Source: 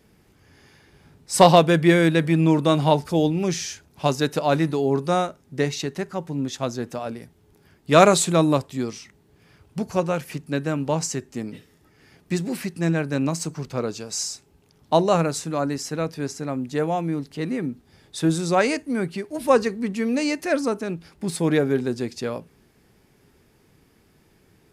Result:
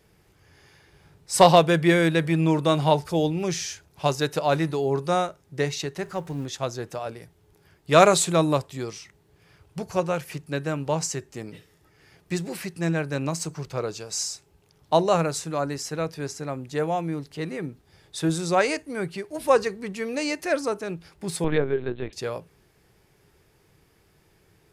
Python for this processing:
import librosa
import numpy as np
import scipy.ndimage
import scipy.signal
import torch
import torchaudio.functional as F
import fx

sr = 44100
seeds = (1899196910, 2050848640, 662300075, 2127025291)

y = fx.law_mismatch(x, sr, coded='mu', at=(6.02, 6.44), fade=0.02)
y = fx.peak_eq(y, sr, hz=240.0, db=-11.5, octaves=0.47)
y = fx.lpc_vocoder(y, sr, seeds[0], excitation='pitch_kept', order=10, at=(21.44, 22.13))
y = y * librosa.db_to_amplitude(-1.0)